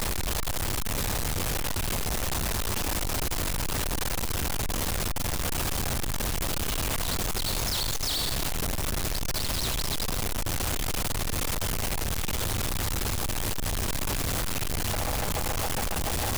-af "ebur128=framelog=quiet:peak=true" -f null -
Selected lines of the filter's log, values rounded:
Integrated loudness:
  I:         -28.8 LUFS
  Threshold: -38.8 LUFS
Loudness range:
  LRA:         1.0 LU
  Threshold: -48.8 LUFS
  LRA low:   -29.1 LUFS
  LRA high:  -28.1 LUFS
True peak:
  Peak:      -21.7 dBFS